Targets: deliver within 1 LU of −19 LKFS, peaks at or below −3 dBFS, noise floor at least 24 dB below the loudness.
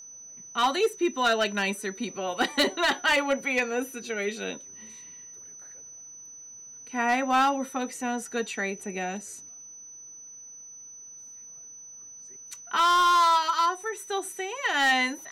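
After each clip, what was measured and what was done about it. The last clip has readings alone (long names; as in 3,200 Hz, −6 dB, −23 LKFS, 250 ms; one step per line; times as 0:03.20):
share of clipped samples 0.9%; peaks flattened at −17.0 dBFS; interfering tone 6,000 Hz; level of the tone −43 dBFS; integrated loudness −26.0 LKFS; sample peak −17.0 dBFS; target loudness −19.0 LKFS
→ clipped peaks rebuilt −17 dBFS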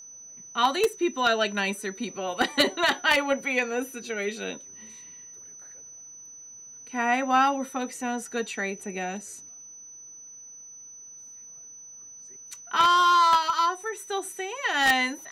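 share of clipped samples 0.0%; interfering tone 6,000 Hz; level of the tone −43 dBFS
→ notch filter 6,000 Hz, Q 30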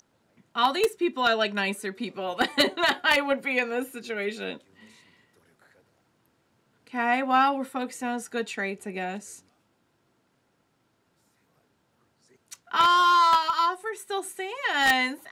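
interfering tone none found; integrated loudness −25.0 LKFS; sample peak −8.0 dBFS; target loudness −19.0 LKFS
→ level +6 dB
brickwall limiter −3 dBFS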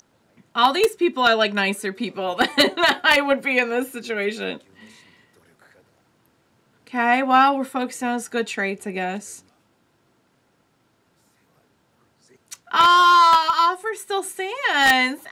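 integrated loudness −19.0 LKFS; sample peak −3.0 dBFS; background noise floor −64 dBFS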